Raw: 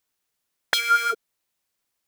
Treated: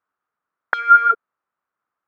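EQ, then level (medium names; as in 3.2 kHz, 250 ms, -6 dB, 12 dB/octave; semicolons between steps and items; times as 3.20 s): high-pass 150 Hz 6 dB/octave; resonant low-pass 1.3 kHz, resonance Q 4.1; -1.0 dB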